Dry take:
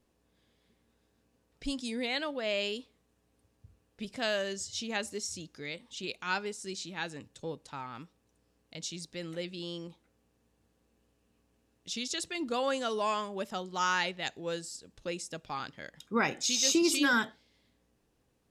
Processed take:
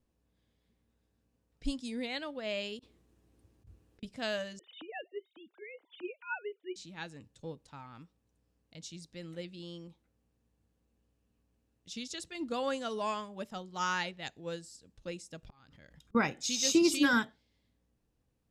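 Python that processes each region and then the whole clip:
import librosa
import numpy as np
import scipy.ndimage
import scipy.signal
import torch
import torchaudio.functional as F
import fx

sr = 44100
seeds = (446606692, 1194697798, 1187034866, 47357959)

y = fx.chain(x, sr, fx.peak_eq(hz=350.0, db=13.0, octaves=0.22),
    fx.over_compress(threshold_db=-59.0, ratio=-1.0), at=(2.79, 4.03))
y = fx.chain(y, sr, fx.sine_speech(),
    fx.highpass(hz=250.0, slope=12),
    fx.band_squash(depth_pct=40), at=(4.59, 6.76))
y = fx.chain(y, sr, fx.auto_swell(attack_ms=718.0),
    fx.low_shelf(hz=92.0, db=12.0),
    fx.pre_swell(db_per_s=73.0), at=(15.43, 16.15))
y = fx.low_shelf(y, sr, hz=200.0, db=9.5)
y = fx.notch(y, sr, hz=390.0, q=13.0)
y = fx.upward_expand(y, sr, threshold_db=-39.0, expansion=1.5)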